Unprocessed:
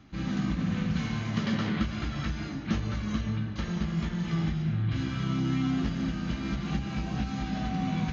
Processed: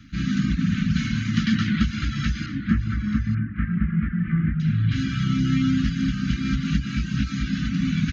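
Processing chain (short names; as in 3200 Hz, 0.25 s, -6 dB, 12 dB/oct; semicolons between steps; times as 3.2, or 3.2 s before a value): elliptic band-stop 270–1400 Hz, stop band 40 dB; reverb removal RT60 0.53 s; 2.46–4.6 steep low-pass 2100 Hz 36 dB/oct; echo 0.884 s -12.5 dB; gain +9 dB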